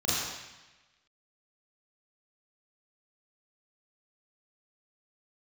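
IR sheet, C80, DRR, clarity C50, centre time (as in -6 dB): -0.5 dB, -9.5 dB, -2.5 dB, 0.106 s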